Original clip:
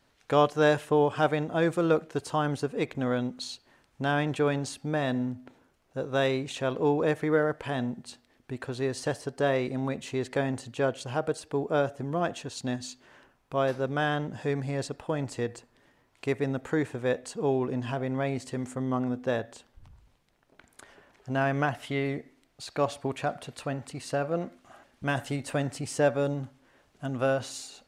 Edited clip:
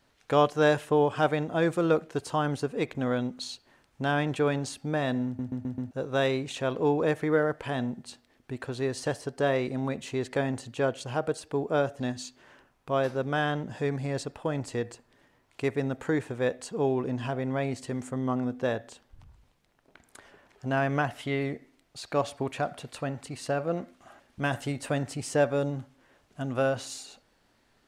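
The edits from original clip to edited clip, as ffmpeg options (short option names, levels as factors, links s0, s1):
-filter_complex "[0:a]asplit=7[s0][s1][s2][s3][s4][s5][s6];[s0]atrim=end=5.392[s7];[s1]atrim=start=5.258:end=5.392[s8];[s2]atrim=start=5.258:end=5.392[s9];[s3]atrim=start=5.258:end=5.392[s10];[s4]atrim=start=5.258:end=5.392[s11];[s5]atrim=start=5.908:end=12.002[s12];[s6]atrim=start=12.638[s13];[s7][s8]acrossfade=d=0.004:c1=hsin:c2=hsin[s14];[s14][s9]acrossfade=d=0.004:c1=hsin:c2=hsin[s15];[s15][s10]acrossfade=d=0.004:c1=hsin:c2=hsin[s16];[s16][s11]acrossfade=d=0.004:c1=hsin:c2=hsin[s17];[s17][s12]acrossfade=d=0.004:c1=hsin:c2=hsin[s18];[s18][s13]acrossfade=d=0.004:c1=hsin:c2=hsin"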